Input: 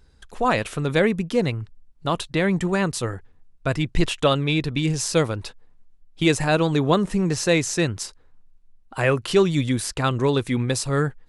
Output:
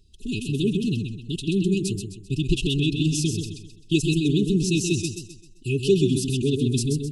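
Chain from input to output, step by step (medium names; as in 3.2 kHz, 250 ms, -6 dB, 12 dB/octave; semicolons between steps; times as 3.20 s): time stretch by phase-locked vocoder 0.63×; brick-wall FIR band-stop 430–2500 Hz; modulated delay 130 ms, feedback 38%, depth 62 cents, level -6 dB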